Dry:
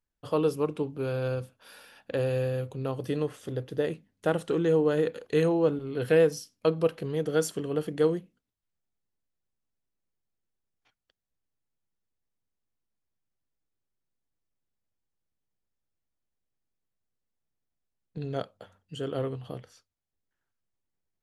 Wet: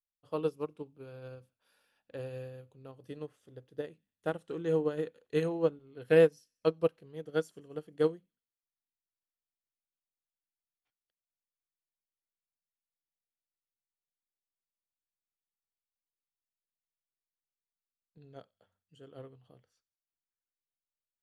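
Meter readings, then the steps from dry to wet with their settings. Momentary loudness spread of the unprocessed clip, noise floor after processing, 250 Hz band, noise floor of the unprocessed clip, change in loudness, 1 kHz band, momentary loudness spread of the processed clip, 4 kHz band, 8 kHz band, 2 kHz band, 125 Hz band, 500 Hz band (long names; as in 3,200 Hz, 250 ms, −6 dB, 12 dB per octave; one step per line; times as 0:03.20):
13 LU, below −85 dBFS, −7.5 dB, −84 dBFS, −3.5 dB, −7.0 dB, 21 LU, −8.0 dB, below −15 dB, −5.0 dB, −9.5 dB, −5.0 dB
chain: delay with a high-pass on its return 92 ms, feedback 54%, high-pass 2,700 Hz, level −23 dB
expander for the loud parts 2.5 to 1, over −32 dBFS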